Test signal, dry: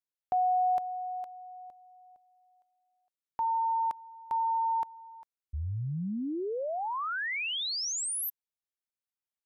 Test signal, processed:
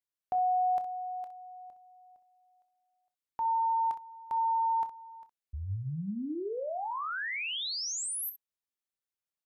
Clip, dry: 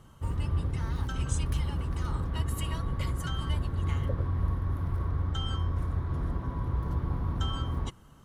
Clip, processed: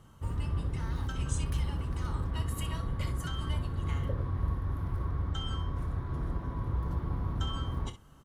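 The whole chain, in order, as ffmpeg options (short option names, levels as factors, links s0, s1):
-af "aecho=1:1:20|30|63:0.158|0.211|0.237,volume=0.75"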